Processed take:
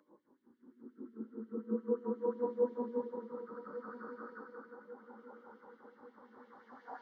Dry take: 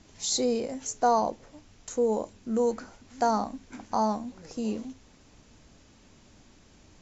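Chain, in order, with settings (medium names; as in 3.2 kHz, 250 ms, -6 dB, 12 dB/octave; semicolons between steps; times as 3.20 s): low-pass sweep 320 Hz -> 5 kHz, 2.63–4.53 s; trance gate "xxxx.xxx.x." 170 bpm; static phaser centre 2.5 kHz, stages 6; Paulstretch 8.6×, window 0.25 s, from 2.32 s; LFO high-pass sine 5.6 Hz 780–2600 Hz; on a send: filtered feedback delay 1147 ms, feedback 52%, low-pass 1.2 kHz, level -13 dB; on the sum: trim +12 dB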